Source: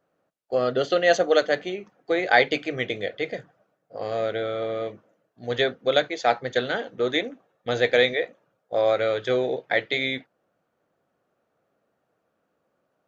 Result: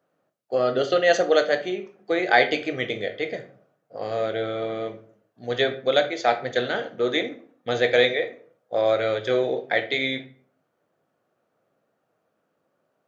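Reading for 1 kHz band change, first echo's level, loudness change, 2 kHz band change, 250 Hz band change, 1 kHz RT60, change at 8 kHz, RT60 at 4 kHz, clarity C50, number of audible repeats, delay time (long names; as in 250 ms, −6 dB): +0.5 dB, no echo audible, +0.5 dB, +0.5 dB, +1.0 dB, 0.45 s, can't be measured, 0.30 s, 13.0 dB, no echo audible, no echo audible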